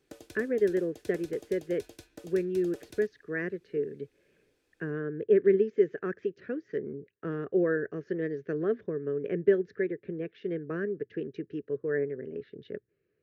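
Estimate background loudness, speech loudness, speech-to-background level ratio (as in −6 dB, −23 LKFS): −50.5 LKFS, −31.0 LKFS, 19.5 dB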